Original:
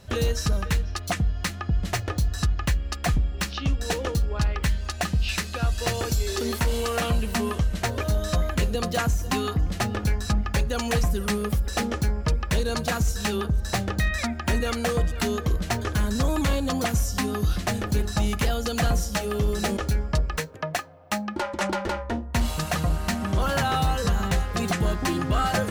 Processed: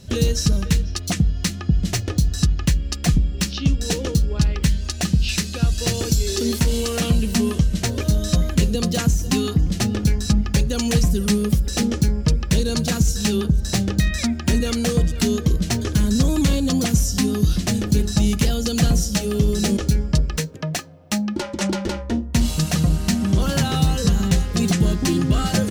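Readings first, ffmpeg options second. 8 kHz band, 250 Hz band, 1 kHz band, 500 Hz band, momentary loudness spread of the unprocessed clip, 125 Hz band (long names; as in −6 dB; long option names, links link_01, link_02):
+7.5 dB, +8.5 dB, −4.0 dB, +2.0 dB, 3 LU, +6.5 dB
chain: -af "firequalizer=gain_entry='entry(110,0);entry(150,6);entry(700,-8);entry(1200,-9);entry(2900,-1);entry(5600,4);entry(13000,-1)':delay=0.05:min_phase=1,volume=4.5dB"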